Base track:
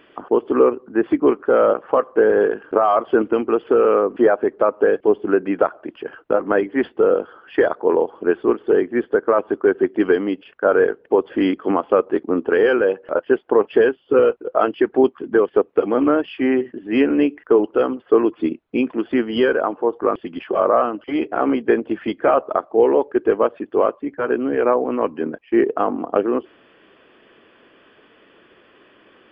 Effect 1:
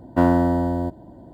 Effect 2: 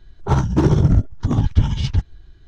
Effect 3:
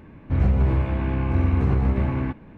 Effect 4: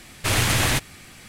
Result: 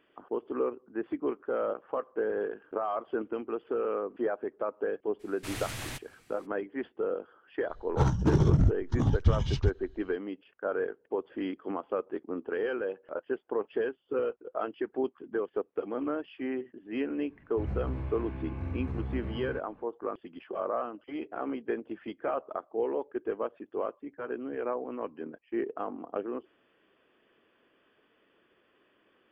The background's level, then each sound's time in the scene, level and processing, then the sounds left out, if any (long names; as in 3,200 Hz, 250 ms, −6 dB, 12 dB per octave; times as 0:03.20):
base track −16 dB
0:05.19: mix in 4 −18 dB, fades 0.02 s
0:07.69: mix in 2 −8.5 dB
0:17.27: mix in 3 −15 dB
not used: 1